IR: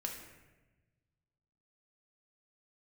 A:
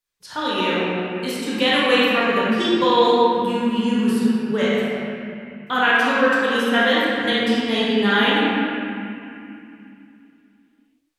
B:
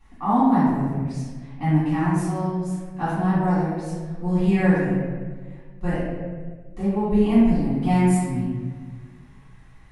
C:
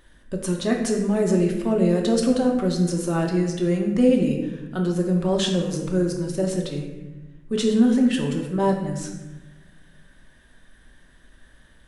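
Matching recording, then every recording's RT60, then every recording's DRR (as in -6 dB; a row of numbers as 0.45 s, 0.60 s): C; 2.6 s, 1.5 s, 1.1 s; -8.5 dB, -13.5 dB, 0.5 dB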